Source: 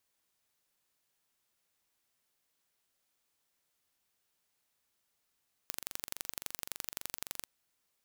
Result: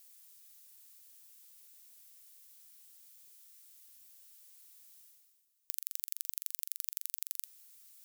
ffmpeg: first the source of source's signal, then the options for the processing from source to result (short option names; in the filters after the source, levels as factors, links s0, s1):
-f lavfi -i "aevalsrc='0.355*eq(mod(n,1869),0)*(0.5+0.5*eq(mod(n,3738),0))':d=1.74:s=44100"
-af "aderivative,areverse,acompressor=mode=upward:threshold=0.00794:ratio=2.5,areverse"